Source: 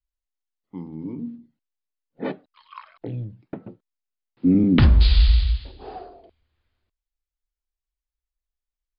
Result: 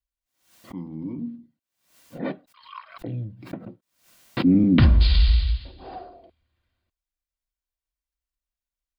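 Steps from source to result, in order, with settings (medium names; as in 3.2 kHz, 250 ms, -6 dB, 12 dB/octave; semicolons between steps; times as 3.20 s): comb of notches 430 Hz; swell ahead of each attack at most 110 dB/s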